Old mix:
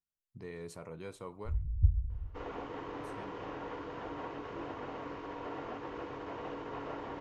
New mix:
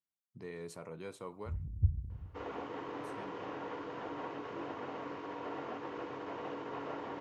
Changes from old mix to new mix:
first sound +6.5 dB; master: add high-pass 130 Hz 12 dB/octave

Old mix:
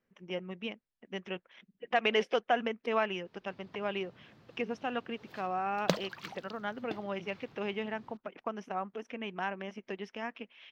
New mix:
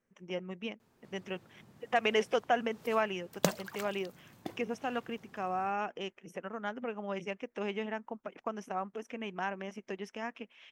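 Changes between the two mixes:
background: entry -2.45 s; master: add resonant high shelf 6.1 kHz +13 dB, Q 1.5

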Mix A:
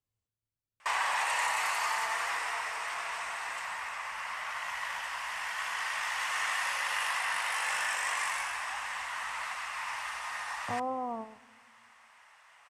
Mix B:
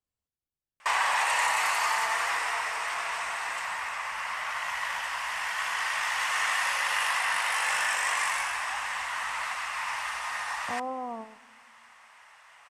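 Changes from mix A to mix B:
speech: add peaking EQ 110 Hz -14.5 dB 0.27 oct; background +4.5 dB

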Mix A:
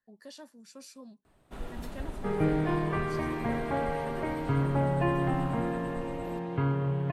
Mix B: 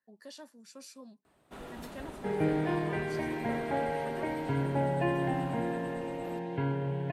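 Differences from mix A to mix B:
second sound: add Butterworth band-stop 1.2 kHz, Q 2.9; master: add high-pass 190 Hz 6 dB/octave

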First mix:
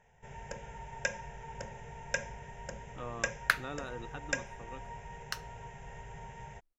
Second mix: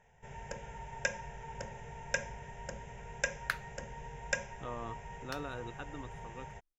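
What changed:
speech: entry +1.65 s; second sound -7.5 dB

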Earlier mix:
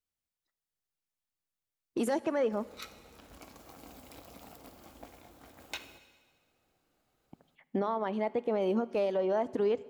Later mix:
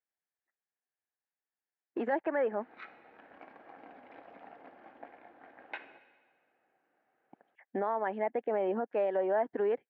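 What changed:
speech: send off; master: add cabinet simulation 300–2300 Hz, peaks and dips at 770 Hz +5 dB, 1.2 kHz -4 dB, 1.7 kHz +9 dB

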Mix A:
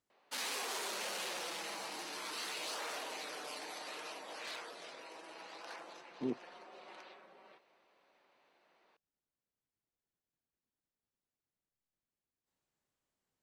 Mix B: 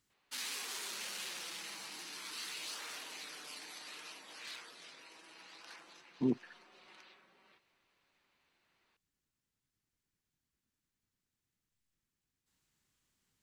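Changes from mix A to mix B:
speech +11.5 dB; master: add peaking EQ 610 Hz -13.5 dB 1.8 oct

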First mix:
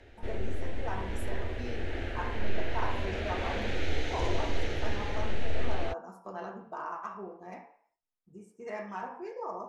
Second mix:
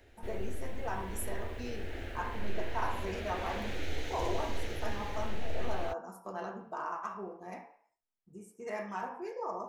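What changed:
background -6.0 dB; master: remove distance through air 68 m

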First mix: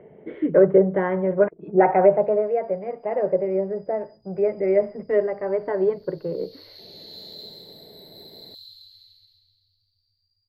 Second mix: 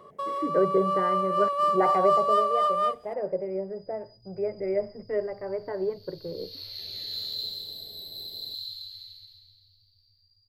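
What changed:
speech -8.0 dB; first sound: unmuted; second sound +7.5 dB

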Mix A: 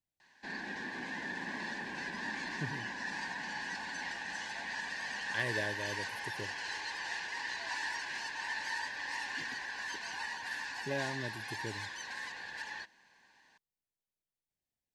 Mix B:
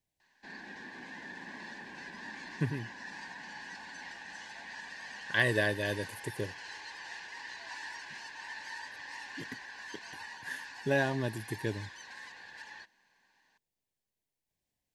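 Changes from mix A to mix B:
speech +8.0 dB; background -5.5 dB

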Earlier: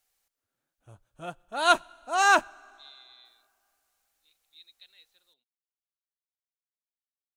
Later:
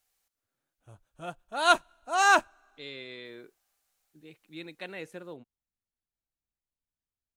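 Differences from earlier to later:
speech: remove band-pass filter 3.9 kHz, Q 8.6; background: send -11.5 dB

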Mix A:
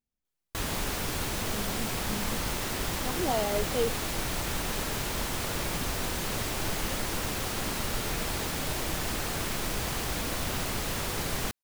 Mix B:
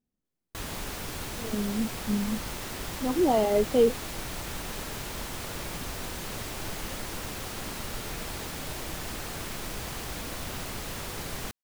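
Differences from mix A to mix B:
speech: add peaking EQ 240 Hz +11 dB 2.8 oct; background -4.5 dB

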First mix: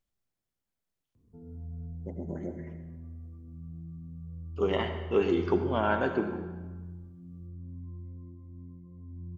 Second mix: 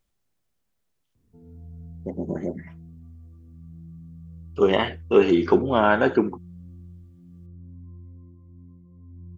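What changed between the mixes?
speech +12.0 dB; reverb: off

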